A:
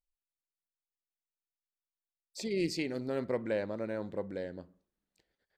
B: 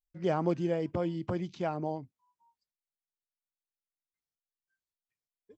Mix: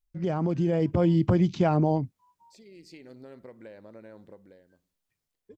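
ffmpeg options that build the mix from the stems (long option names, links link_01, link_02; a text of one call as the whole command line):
ffmpeg -i stem1.wav -i stem2.wav -filter_complex "[0:a]acompressor=threshold=-37dB:ratio=6,adelay=150,volume=-6dB,afade=type=out:start_time=4.19:duration=0.49:silence=0.223872[link_01];[1:a]lowshelf=frequency=220:gain=11,alimiter=limit=-22.5dB:level=0:latency=1:release=45,dynaudnorm=framelen=520:gausssize=3:maxgain=6.5dB,volume=2.5dB,asplit=2[link_02][link_03];[link_03]apad=whole_len=252378[link_04];[link_01][link_04]sidechaincompress=threshold=-42dB:ratio=4:attack=6.1:release=646[link_05];[link_05][link_02]amix=inputs=2:normalize=0" out.wav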